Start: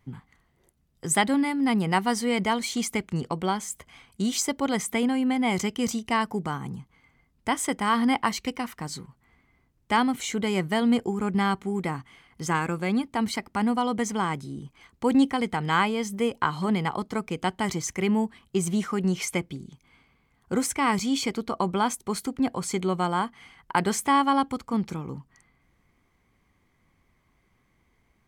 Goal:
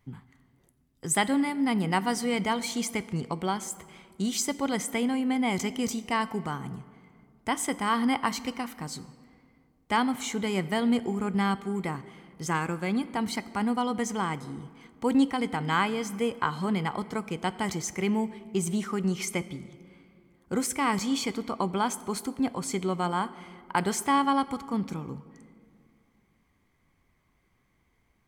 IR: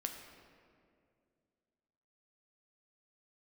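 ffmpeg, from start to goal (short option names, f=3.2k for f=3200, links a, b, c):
-filter_complex "[0:a]asplit=2[a][b];[1:a]atrim=start_sample=2205,highshelf=f=7.9k:g=7[c];[b][c]afir=irnorm=-1:irlink=0,volume=-6.5dB[d];[a][d]amix=inputs=2:normalize=0,volume=-5.5dB"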